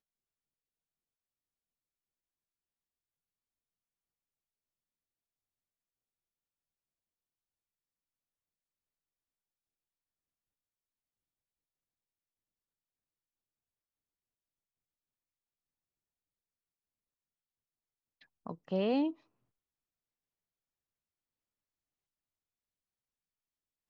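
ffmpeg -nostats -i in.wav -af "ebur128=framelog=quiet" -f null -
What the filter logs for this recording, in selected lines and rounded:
Integrated loudness:
  I:         -33.0 LUFS
  Threshold: -45.7 LUFS
Loudness range:
  LRA:         7.0 LU
  Threshold: -60.2 LUFS
  LRA low:   -46.3 LUFS
  LRA high:  -39.3 LUFS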